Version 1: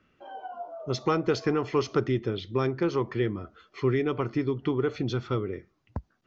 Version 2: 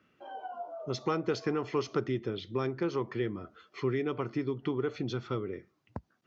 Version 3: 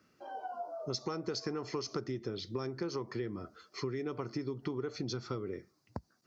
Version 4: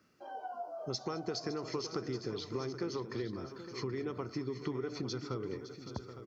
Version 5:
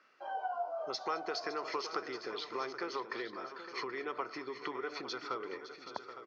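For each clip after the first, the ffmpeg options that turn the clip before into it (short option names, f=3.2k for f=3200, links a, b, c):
-filter_complex "[0:a]asplit=2[a][b];[b]acompressor=threshold=-34dB:ratio=6,volume=-1dB[c];[a][c]amix=inputs=2:normalize=0,highpass=110,volume=-7dB"
-af "highshelf=f=3.9k:t=q:w=3:g=6.5,acompressor=threshold=-33dB:ratio=6"
-af "aecho=1:1:215|561|778|860:0.106|0.224|0.251|0.237,volume=-1dB"
-af "highpass=760,lowpass=3.1k,volume=8.5dB"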